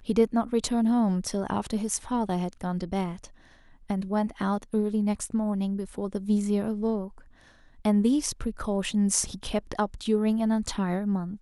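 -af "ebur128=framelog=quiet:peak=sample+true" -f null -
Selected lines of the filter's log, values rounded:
Integrated loudness:
  I:         -27.6 LUFS
  Threshold: -38.0 LUFS
Loudness range:
  LRA:         3.3 LU
  Threshold: -48.4 LUFS
  LRA low:   -30.2 LUFS
  LRA high:  -26.9 LUFS
Sample peak:
  Peak:       -7.7 dBFS
True peak:
  Peak:       -7.3 dBFS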